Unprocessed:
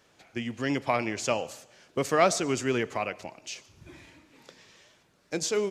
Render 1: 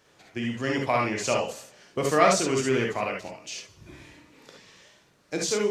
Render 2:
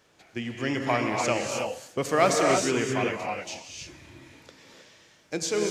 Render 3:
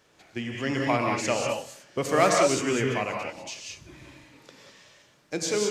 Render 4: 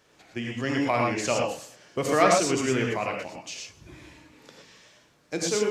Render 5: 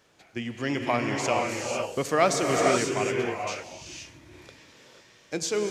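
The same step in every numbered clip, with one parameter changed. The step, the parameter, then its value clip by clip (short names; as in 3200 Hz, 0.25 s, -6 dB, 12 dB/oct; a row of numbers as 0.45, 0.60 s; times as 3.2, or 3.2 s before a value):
non-linear reverb, gate: 90, 340, 220, 140, 530 ms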